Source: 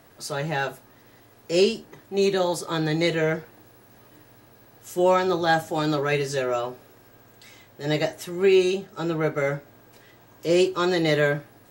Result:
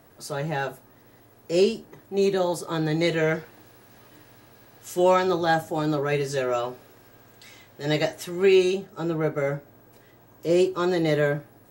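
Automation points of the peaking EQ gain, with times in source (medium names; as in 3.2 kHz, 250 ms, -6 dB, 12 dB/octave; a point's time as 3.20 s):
peaking EQ 3.6 kHz 2.9 oct
2.87 s -5 dB
3.37 s +3 dB
4.98 s +3 dB
5.88 s -8 dB
6.60 s +1 dB
8.51 s +1 dB
9.02 s -6.5 dB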